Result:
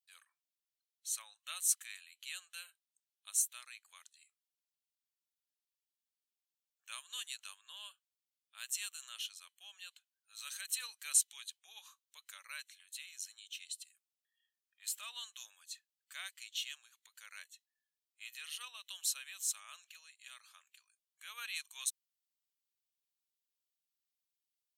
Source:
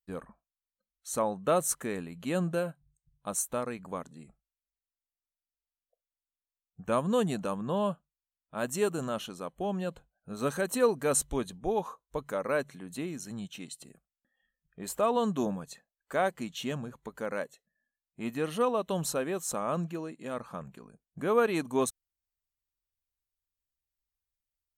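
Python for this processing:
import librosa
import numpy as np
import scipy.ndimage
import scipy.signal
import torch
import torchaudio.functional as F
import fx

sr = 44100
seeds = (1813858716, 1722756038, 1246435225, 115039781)

y = fx.ladder_highpass(x, sr, hz=2300.0, resonance_pct=25)
y = y * 10.0 ** (5.5 / 20.0)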